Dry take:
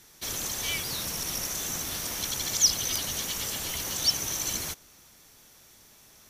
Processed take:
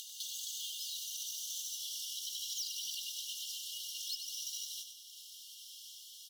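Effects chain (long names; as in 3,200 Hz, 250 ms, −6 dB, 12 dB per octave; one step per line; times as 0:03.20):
each half-wave held at its own peak
source passing by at 0:01.54, 21 m/s, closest 10 metres
high-shelf EQ 4,900 Hz −7.5 dB
comb filter 3.9 ms
upward compression, threshold −35 dBFS
brickwall limiter −26 dBFS, peak gain reduction 10 dB
downward compressor, threshold −40 dBFS, peak gain reduction 9 dB
linear-phase brick-wall high-pass 2,800 Hz
repeating echo 96 ms, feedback 60%, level −8 dB
level +3.5 dB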